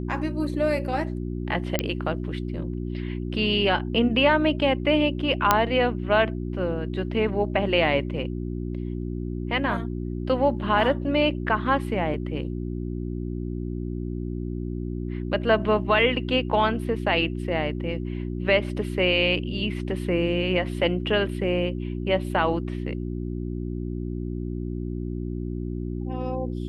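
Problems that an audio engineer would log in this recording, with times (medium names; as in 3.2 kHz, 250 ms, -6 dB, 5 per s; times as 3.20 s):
hum 60 Hz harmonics 6 -30 dBFS
1.79 s: pop -8 dBFS
5.51 s: pop -2 dBFS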